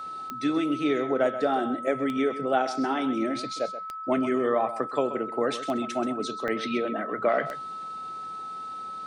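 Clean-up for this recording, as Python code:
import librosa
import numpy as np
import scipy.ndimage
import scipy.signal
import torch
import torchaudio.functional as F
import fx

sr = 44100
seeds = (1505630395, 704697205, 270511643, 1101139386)

y = fx.fix_declick_ar(x, sr, threshold=10.0)
y = fx.notch(y, sr, hz=1300.0, q=30.0)
y = fx.fix_interpolate(y, sr, at_s=(6.48,), length_ms=1.5)
y = fx.fix_echo_inverse(y, sr, delay_ms=130, level_db=-12.5)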